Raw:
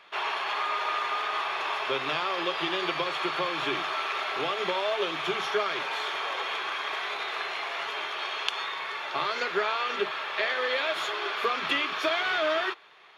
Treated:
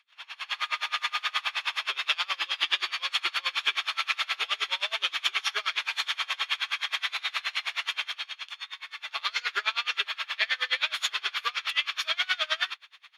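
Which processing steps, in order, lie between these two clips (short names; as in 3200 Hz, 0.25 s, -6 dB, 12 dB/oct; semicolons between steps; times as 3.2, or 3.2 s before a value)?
Bessel high-pass 2800 Hz, order 2; AGC gain up to 16.5 dB; dB-linear tremolo 9.5 Hz, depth 28 dB; gain -3 dB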